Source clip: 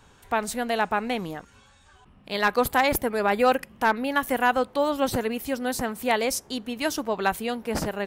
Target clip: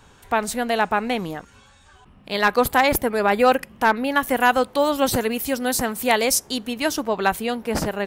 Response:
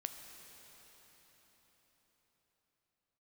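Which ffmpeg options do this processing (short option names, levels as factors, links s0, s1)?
-filter_complex "[0:a]asettb=1/sr,asplit=3[s0][s1][s2];[s0]atrim=end=4.404[s3];[s1]atrim=start=4.4:end=6.74,asetpts=PTS-STARTPTS,afade=t=in:d=0.004:c=qsin,afade=t=out:st=2.336:d=0.004:c=qsin,highshelf=f=4000:g=6.5[s4];[s2]atrim=start=6.736[s5];[s3][s4]acrossfade=d=0.004:c1=hsin:c2=qsin[s6];[s6][s5]acrossfade=d=0.004:c1=qsin:c2=hsin,volume=1.58"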